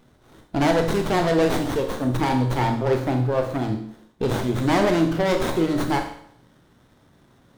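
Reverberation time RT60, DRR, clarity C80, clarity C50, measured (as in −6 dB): 0.65 s, 4.5 dB, 11.0 dB, 8.0 dB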